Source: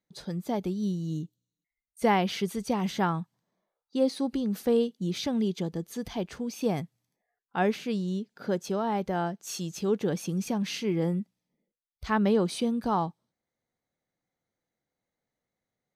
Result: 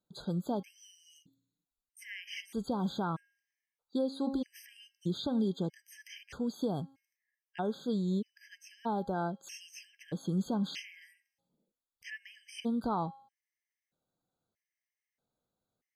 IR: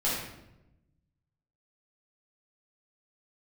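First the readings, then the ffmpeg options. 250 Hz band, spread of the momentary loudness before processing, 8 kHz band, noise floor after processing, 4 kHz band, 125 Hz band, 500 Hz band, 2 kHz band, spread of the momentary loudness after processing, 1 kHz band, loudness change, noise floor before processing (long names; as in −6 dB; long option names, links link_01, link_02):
−6.0 dB, 10 LU, −11.0 dB, below −85 dBFS, −6.5 dB, −6.0 dB, −9.5 dB, −9.0 dB, 18 LU, −8.0 dB, −6.5 dB, below −85 dBFS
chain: -filter_complex "[0:a]acrossover=split=4500[link_01][link_02];[link_02]acompressor=threshold=-49dB:ratio=4:attack=1:release=60[link_03];[link_01][link_03]amix=inputs=2:normalize=0,bandreject=frequency=271.2:width_type=h:width=4,bandreject=frequency=542.4:width_type=h:width=4,bandreject=frequency=813.6:width_type=h:width=4,bandreject=frequency=1084.8:width_type=h:width=4,bandreject=frequency=1356:width_type=h:width=4,bandreject=frequency=1627.2:width_type=h:width=4,bandreject=frequency=1898.4:width_type=h:width=4,bandreject=frequency=2169.6:width_type=h:width=4,bandreject=frequency=2440.8:width_type=h:width=4,bandreject=frequency=2712:width_type=h:width=4,bandreject=frequency=2983.2:width_type=h:width=4,bandreject=frequency=3254.4:width_type=h:width=4,bandreject=frequency=3525.6:width_type=h:width=4,bandreject=frequency=3796.8:width_type=h:width=4,bandreject=frequency=4068:width_type=h:width=4,bandreject=frequency=4339.2:width_type=h:width=4,bandreject=frequency=4610.4:width_type=h:width=4,bandreject=frequency=4881.6:width_type=h:width=4,bandreject=frequency=5152.8:width_type=h:width=4,bandreject=frequency=5424:width_type=h:width=4,bandreject=frequency=5695.2:width_type=h:width=4,alimiter=limit=-23dB:level=0:latency=1:release=282,afftfilt=real='re*gt(sin(2*PI*0.79*pts/sr)*(1-2*mod(floor(b*sr/1024/1600),2)),0)':imag='im*gt(sin(2*PI*0.79*pts/sr)*(1-2*mod(floor(b*sr/1024/1600),2)),0)':win_size=1024:overlap=0.75"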